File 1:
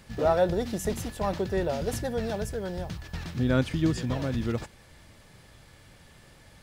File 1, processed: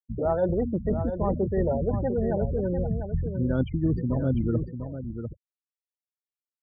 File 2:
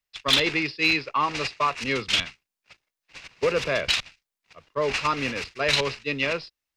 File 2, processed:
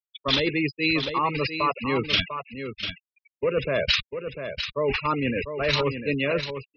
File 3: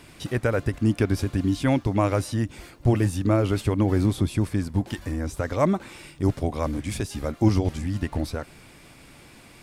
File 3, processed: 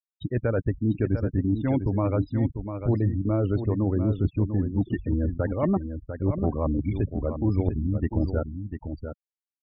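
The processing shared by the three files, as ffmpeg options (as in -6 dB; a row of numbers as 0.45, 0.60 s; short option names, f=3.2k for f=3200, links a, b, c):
-af "afftdn=nr=12:nf=-41,agate=range=-33dB:threshold=-52dB:ratio=3:detection=peak,lowpass=6.6k,bandreject=f=720:w=19,afftfilt=real='re*gte(hypot(re,im),0.0447)':imag='im*gte(hypot(re,im),0.0447)':win_size=1024:overlap=0.75,tiltshelf=f=1.4k:g=9,areverse,acompressor=threshold=-23dB:ratio=4,areverse,crystalizer=i=4.5:c=0,aecho=1:1:697:0.376"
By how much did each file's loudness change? +2.0, -1.0, -1.5 LU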